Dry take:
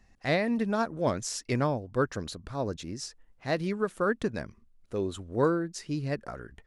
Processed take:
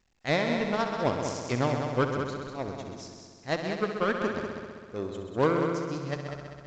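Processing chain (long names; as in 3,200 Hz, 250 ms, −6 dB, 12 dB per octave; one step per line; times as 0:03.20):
harmonic generator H 3 −23 dB, 7 −23 dB, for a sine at −13.5 dBFS
noise gate with hold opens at −55 dBFS
on a send: echo machine with several playback heads 65 ms, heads all three, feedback 60%, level −10 dB
on the sum: level +1.5 dB
A-law companding 128 kbit/s 16,000 Hz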